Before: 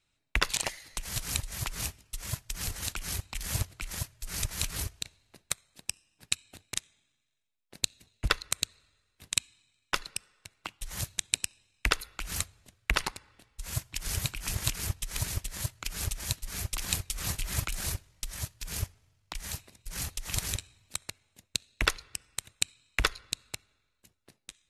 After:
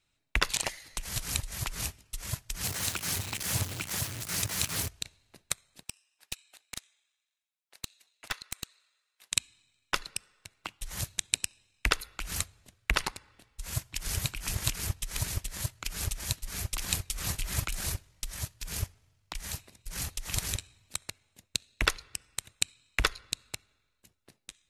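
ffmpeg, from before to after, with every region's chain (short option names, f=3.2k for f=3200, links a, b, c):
-filter_complex "[0:a]asettb=1/sr,asplit=3[a][b][c];[a]atrim=end=2.644[d];[b]atrim=start=2.64:end=4.88,asetpts=PTS-STARTPTS,afade=t=in:d=0.004:c=qsin,afade=t=out:st=2.236:d=0.004:c=qsin,aeval=exprs='val(0)+0.5*0.0251*sgn(val(0))':c=same,highpass=f=89:w=0.5412,highpass=f=89:w=1.3066[e];[c]atrim=start=4.876[f];[d][e]acrossfade=d=0.004:c1=hsin:c2=qsin[g];[g][f]acrossfade=d=0.004:c1=qsin:c2=hsin,asettb=1/sr,asplit=3[h][i][j];[h]atrim=end=5.834[k];[i]atrim=start=5.83:end=9.32,asetpts=PTS-STARTPTS,afade=t=in:d=0.004:c=qsin,afade=t=out:st=3.486:d=0.004:c=qsin,highpass=820,aeval=exprs='(tanh(15.8*val(0)+0.55)-tanh(0.55))/15.8':c=same[l];[j]atrim=start=9.316[m];[k][l]acrossfade=d=0.004:c1=hsin:c2=qsin[n];[n][m]acrossfade=d=0.004:c1=qsin:c2=hsin"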